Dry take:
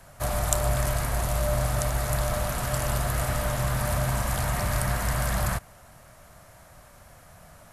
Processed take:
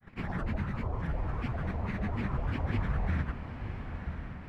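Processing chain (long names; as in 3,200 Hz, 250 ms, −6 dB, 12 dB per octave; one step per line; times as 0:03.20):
lower of the sound and its delayed copy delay 0.74 ms
low-pass filter 1,200 Hz 12 dB per octave
time stretch by phase vocoder 0.58×
granular cloud, pitch spread up and down by 12 semitones
on a send: feedback delay with all-pass diffusion 1,020 ms, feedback 54%, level −8 dB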